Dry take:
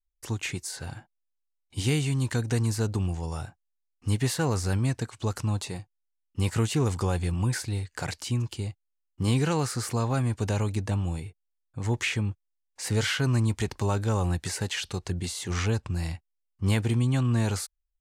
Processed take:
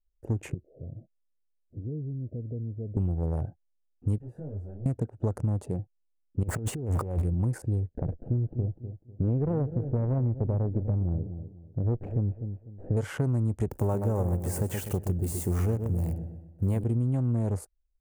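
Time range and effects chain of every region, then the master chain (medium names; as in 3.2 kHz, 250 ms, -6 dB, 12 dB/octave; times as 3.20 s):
0.54–2.97 s: Chebyshev low-pass 660 Hz, order 6 + compression 2.5:1, threshold -45 dBFS
4.18–4.86 s: hard clipper -28.5 dBFS + level held to a coarse grid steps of 13 dB + detune thickener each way 44 cents
6.43–7.25 s: jump at every zero crossing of -33 dBFS + peaking EQ 2.2 kHz +4.5 dB 2.7 oct + compressor with a negative ratio -29 dBFS, ratio -0.5
7.86–12.97 s: comb filter that takes the minimum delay 0.42 ms + low-pass 1.2 kHz + feedback delay 248 ms, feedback 28%, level -13 dB
13.71–16.84 s: zero-crossing glitches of -28.5 dBFS + feedback delay 125 ms, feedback 46%, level -8 dB
whole clip: local Wiener filter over 41 samples; FFT filter 330 Hz 0 dB, 580 Hz +3 dB, 4 kHz -24 dB, 9.3 kHz -8 dB; compression, threshold -30 dBFS; trim +6 dB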